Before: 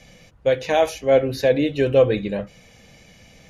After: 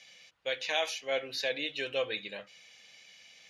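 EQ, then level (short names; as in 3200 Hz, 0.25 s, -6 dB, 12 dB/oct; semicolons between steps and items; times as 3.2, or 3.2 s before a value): band-pass 3600 Hz, Q 1.1; 0.0 dB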